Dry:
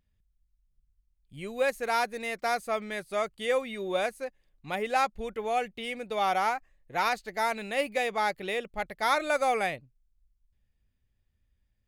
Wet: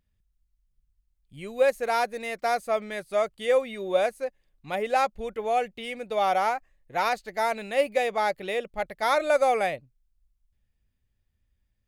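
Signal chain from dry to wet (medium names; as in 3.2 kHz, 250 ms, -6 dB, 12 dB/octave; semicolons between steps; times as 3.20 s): dynamic bell 580 Hz, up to +7 dB, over -41 dBFS, Q 2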